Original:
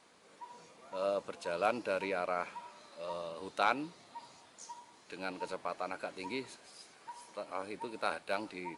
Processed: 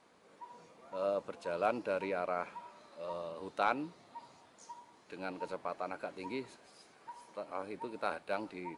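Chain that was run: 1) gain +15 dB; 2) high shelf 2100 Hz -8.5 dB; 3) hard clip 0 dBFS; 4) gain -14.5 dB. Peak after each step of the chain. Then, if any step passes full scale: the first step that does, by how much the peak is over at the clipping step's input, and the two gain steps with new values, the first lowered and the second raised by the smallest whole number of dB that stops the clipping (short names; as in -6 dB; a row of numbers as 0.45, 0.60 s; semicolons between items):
-1.5, -3.0, -3.0, -17.5 dBFS; no overload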